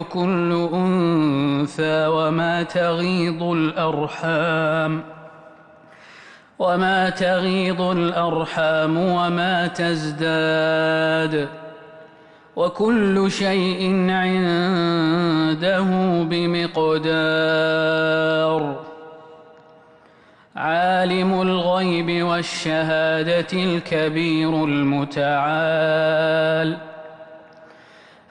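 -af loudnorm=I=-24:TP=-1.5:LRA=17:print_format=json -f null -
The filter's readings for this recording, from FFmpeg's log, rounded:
"input_i" : "-19.8",
"input_tp" : "-9.9",
"input_lra" : "3.4",
"input_thresh" : "-30.8",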